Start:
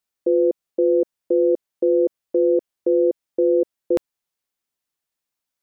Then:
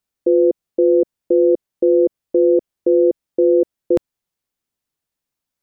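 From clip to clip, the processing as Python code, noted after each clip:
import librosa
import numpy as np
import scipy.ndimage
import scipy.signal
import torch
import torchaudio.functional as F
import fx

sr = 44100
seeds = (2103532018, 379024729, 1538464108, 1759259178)

y = fx.low_shelf(x, sr, hz=360.0, db=9.0)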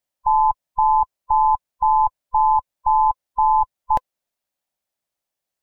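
y = fx.band_swap(x, sr, width_hz=500)
y = y * 10.0 ** (-1.5 / 20.0)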